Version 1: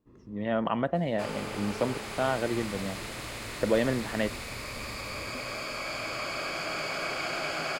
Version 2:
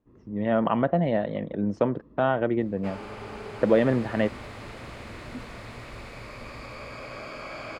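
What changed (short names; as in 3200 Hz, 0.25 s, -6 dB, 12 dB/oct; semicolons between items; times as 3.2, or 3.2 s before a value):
speech +5.5 dB; second sound: entry +1.65 s; master: add LPF 1600 Hz 6 dB/oct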